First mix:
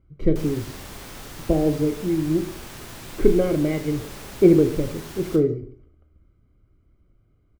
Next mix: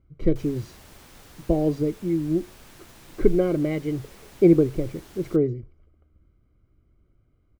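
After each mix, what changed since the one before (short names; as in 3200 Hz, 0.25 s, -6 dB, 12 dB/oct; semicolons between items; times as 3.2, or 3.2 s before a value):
background -7.0 dB; reverb: off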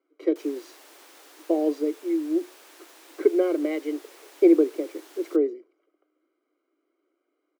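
master: add steep high-pass 290 Hz 72 dB/oct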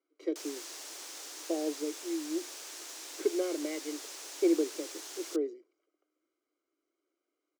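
speech -10.0 dB; master: add bell 6300 Hz +13 dB 1.5 oct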